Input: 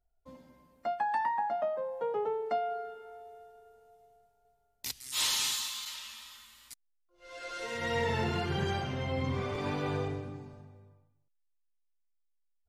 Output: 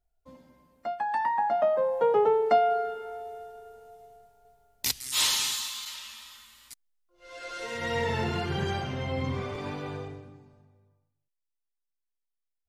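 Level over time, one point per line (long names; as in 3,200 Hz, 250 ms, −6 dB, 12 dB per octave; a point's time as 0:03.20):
0:01.00 +0.5 dB
0:01.84 +10 dB
0:04.87 +10 dB
0:05.47 +2 dB
0:09.27 +2 dB
0:10.41 −8 dB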